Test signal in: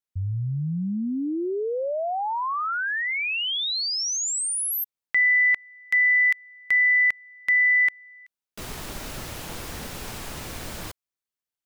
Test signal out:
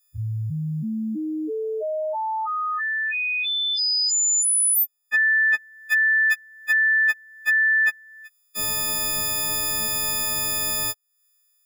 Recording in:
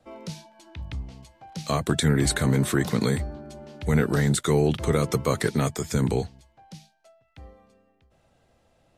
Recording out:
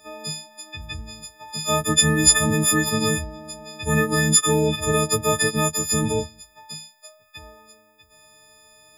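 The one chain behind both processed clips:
every partial snapped to a pitch grid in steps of 6 semitones
one half of a high-frequency compander encoder only

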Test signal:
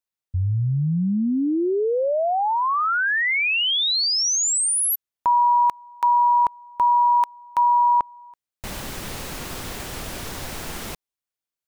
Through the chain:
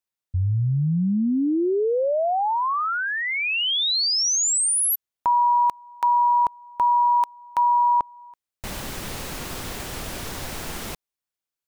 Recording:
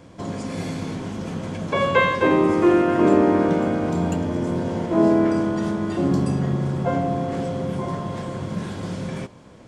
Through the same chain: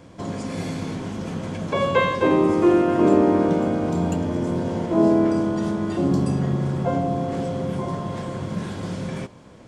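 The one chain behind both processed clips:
dynamic equaliser 1,800 Hz, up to −5 dB, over −37 dBFS, Q 1.2

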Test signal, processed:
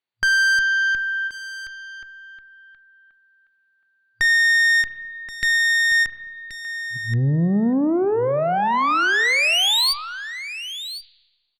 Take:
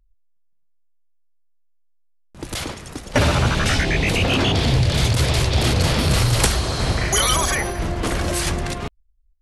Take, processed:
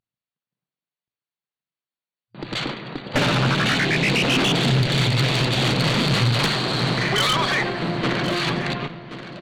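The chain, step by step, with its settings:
brick-wall band-pass 110–4,700 Hz
dynamic equaliser 630 Hz, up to −4 dB, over −37 dBFS, Q 0.89
tube saturation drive 22 dB, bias 0.55
single-tap delay 1,078 ms −13 dB
spring reverb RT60 1.2 s, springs 30/35 ms, chirp 20 ms, DRR 14.5 dB
every ending faded ahead of time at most 250 dB per second
level +6.5 dB

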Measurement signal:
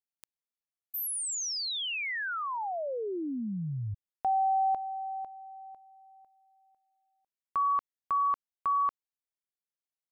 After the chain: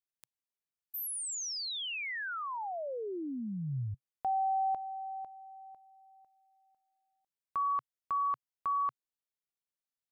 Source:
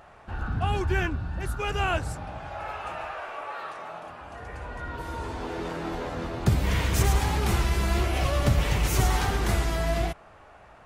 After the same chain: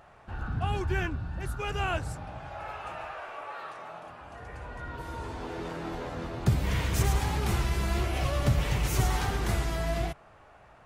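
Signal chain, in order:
parametric band 130 Hz +4 dB 0.47 octaves
level −4 dB

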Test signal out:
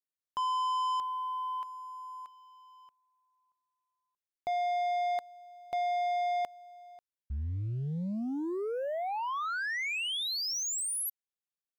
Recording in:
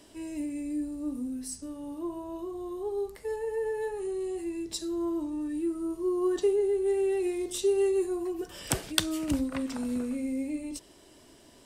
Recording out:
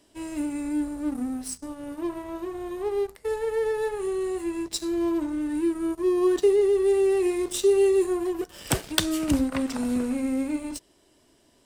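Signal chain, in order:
leveller curve on the samples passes 2
level −2 dB

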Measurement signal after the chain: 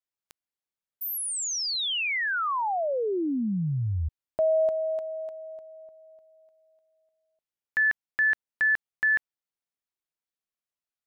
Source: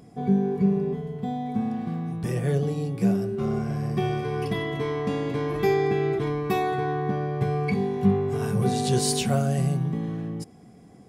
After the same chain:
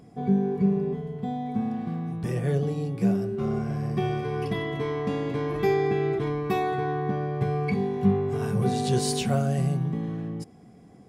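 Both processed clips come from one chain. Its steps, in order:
high-shelf EQ 5,200 Hz −5 dB
level −1 dB

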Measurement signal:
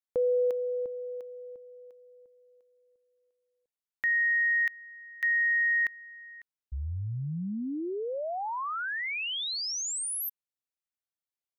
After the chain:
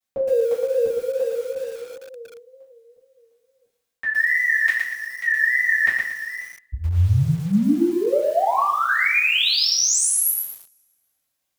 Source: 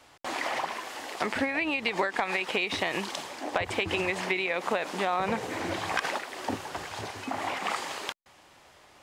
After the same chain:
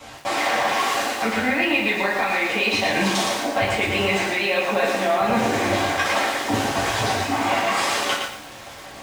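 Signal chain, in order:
reversed playback
downward compressor 6 to 1, threshold −36 dBFS
reversed playback
tape wow and flutter 2.1 Hz 130 cents
coupled-rooms reverb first 0.42 s, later 1.6 s, from −27 dB, DRR −8 dB
feedback echo at a low word length 114 ms, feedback 35%, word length 8 bits, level −4 dB
level +8 dB

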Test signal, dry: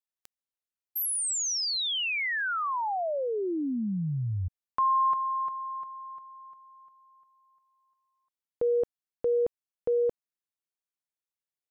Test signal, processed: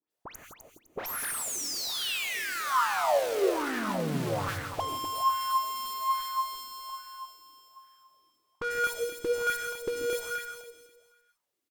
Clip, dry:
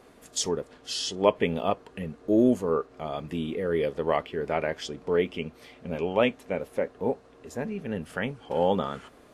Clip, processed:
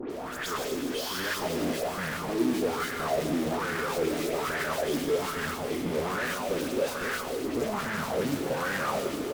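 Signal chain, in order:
each half-wave held at its own peak
high-pass filter 55 Hz 6 dB per octave
parametric band 330 Hz +3 dB 0.73 octaves
downward compressor, threshold −29 dBFS
all-pass dispersion highs, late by 105 ms, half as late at 2,200 Hz
tube saturation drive 44 dB, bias 0.55
repeating echo 254 ms, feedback 33%, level −6.5 dB
reverb whose tail is shaped and stops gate 190 ms rising, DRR 4 dB
auto-filter bell 1.2 Hz 290–1,700 Hz +15 dB
level +8.5 dB

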